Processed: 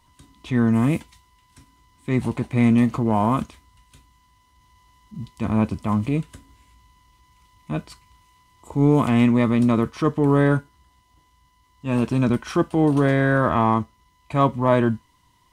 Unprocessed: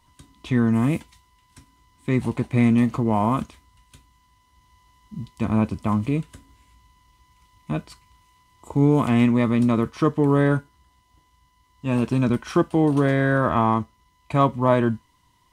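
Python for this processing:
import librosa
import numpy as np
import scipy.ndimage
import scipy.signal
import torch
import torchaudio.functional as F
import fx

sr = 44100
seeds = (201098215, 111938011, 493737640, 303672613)

y = fx.transient(x, sr, attack_db=-4, sustain_db=0)
y = y * librosa.db_to_amplitude(1.5)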